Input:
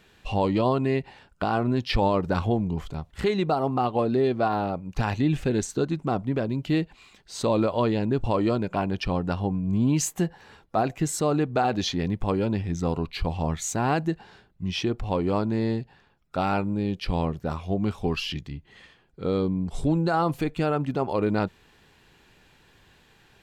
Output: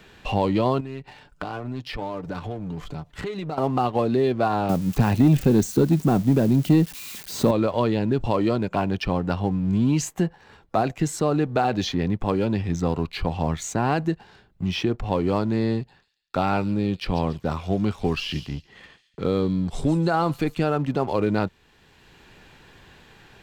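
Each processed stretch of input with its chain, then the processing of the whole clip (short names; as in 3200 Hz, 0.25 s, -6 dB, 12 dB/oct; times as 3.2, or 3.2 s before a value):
0.8–3.58 comb 6.8 ms, depth 48% + compressor 3:1, threshold -38 dBFS
4.69–7.51 switching spikes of -28.5 dBFS + bell 190 Hz +10.5 dB 2.5 oct
15.74–20.59 gate -59 dBFS, range -30 dB + thin delay 0.14 s, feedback 30%, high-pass 4500 Hz, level -5.5 dB
whole clip: bell 11000 Hz -4 dB 0.77 oct; sample leveller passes 1; three-band squash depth 40%; gain -2 dB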